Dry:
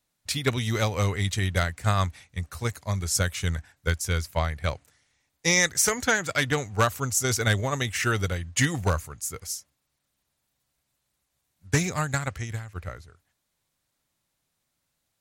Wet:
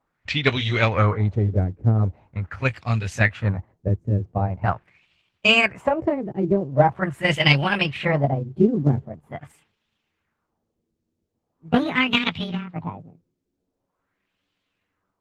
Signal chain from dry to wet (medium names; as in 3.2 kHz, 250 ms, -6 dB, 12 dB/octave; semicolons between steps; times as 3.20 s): pitch bend over the whole clip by +11.5 st starting unshifted; LFO low-pass sine 0.43 Hz 340–3300 Hz; trim +6 dB; Opus 16 kbps 48 kHz